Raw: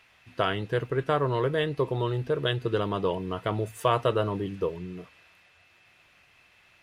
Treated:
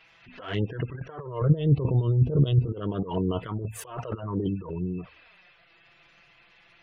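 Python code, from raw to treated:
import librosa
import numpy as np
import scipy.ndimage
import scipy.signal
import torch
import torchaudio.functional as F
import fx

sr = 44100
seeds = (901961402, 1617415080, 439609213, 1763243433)

p1 = fx.backlash(x, sr, play_db=-39.0)
p2 = x + (p1 * 10.0 ** (-7.5 / 20.0))
p3 = fx.spec_gate(p2, sr, threshold_db=-25, keep='strong')
p4 = fx.over_compress(p3, sr, threshold_db=-29.0, ratio=-0.5)
p5 = fx.bass_treble(p4, sr, bass_db=12, treble_db=-8, at=(1.41, 2.67))
p6 = fx.env_flanger(p5, sr, rest_ms=6.7, full_db=-23.0)
y = fx.pre_swell(p6, sr, db_per_s=120.0)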